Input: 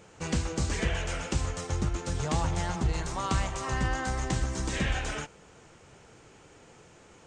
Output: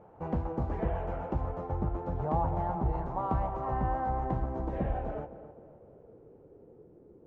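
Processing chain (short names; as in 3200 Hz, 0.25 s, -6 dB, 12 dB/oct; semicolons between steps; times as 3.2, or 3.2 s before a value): tape echo 0.258 s, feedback 48%, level -11 dB, low-pass 1800 Hz; low-pass sweep 810 Hz -> 390 Hz, 4.32–7.05; gain -3 dB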